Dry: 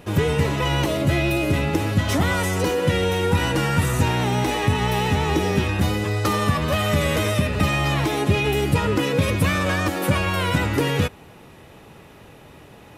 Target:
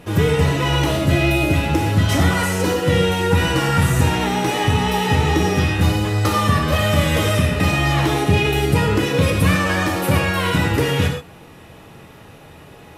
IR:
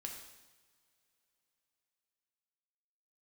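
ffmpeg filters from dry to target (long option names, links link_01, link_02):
-filter_complex "[1:a]atrim=start_sample=2205,afade=type=out:start_time=0.14:duration=0.01,atrim=end_sample=6615,asetrate=29106,aresample=44100[link_01];[0:a][link_01]afir=irnorm=-1:irlink=0,volume=4dB"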